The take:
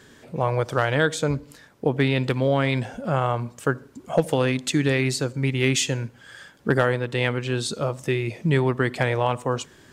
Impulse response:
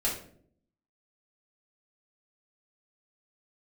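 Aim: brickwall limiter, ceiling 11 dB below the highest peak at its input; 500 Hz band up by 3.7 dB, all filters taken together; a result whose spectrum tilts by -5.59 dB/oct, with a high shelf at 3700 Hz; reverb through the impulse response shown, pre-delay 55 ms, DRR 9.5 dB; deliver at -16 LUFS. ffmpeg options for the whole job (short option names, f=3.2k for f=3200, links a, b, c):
-filter_complex "[0:a]equalizer=f=500:t=o:g=4.5,highshelf=f=3.7k:g=-4,alimiter=limit=-16dB:level=0:latency=1,asplit=2[a][b];[1:a]atrim=start_sample=2205,adelay=55[c];[b][c]afir=irnorm=-1:irlink=0,volume=-16.5dB[d];[a][d]amix=inputs=2:normalize=0,volume=11dB"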